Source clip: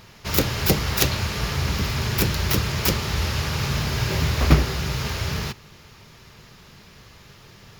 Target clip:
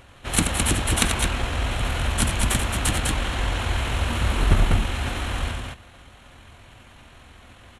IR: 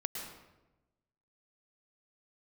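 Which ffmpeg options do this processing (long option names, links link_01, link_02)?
-af "aecho=1:1:81.63|209.9:0.447|0.708,asetrate=26222,aresample=44100,atempo=1.68179,volume=-1.5dB"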